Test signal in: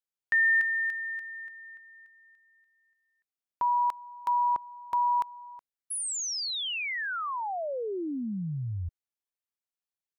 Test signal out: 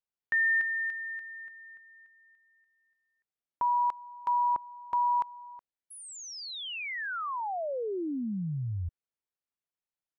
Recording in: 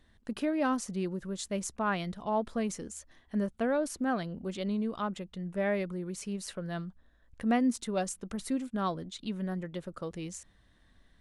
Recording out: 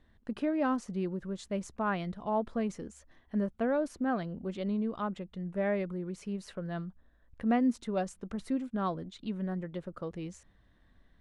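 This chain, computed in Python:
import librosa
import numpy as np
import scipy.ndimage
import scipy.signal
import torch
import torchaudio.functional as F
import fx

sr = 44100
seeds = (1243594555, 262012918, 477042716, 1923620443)

y = fx.lowpass(x, sr, hz=1900.0, slope=6)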